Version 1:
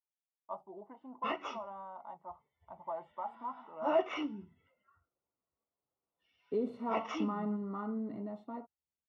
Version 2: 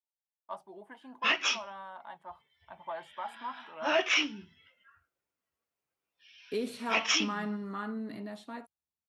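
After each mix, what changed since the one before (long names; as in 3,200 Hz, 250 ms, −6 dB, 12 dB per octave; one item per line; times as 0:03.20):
master: remove Savitzky-Golay smoothing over 65 samples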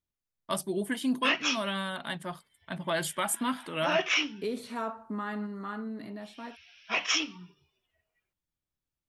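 first voice: remove resonant band-pass 870 Hz, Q 4.3
second voice: entry −2.10 s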